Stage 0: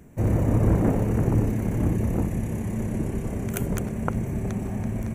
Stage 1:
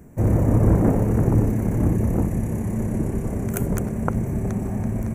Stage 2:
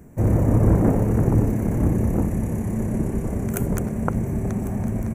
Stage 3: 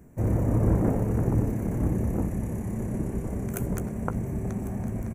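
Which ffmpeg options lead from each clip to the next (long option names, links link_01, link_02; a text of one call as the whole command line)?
ffmpeg -i in.wav -af "equalizer=frequency=3300:width_type=o:width=1.2:gain=-9.5,volume=3.5dB" out.wav
ffmpeg -i in.wav -af "aecho=1:1:1100:0.15" out.wav
ffmpeg -i in.wav -filter_complex "[0:a]asplit=2[link_01][link_02];[link_02]adelay=16,volume=-13.5dB[link_03];[link_01][link_03]amix=inputs=2:normalize=0,volume=-6dB" out.wav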